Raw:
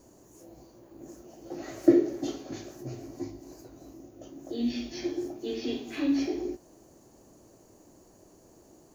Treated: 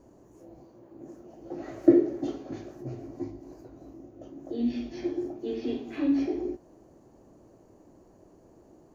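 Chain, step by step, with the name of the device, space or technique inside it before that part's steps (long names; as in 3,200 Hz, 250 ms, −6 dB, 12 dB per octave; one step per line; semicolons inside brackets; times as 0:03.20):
through cloth (high-shelf EQ 3,100 Hz −17 dB)
0:00.57–0:01.26: high-pass filter 84 Hz
level +1.5 dB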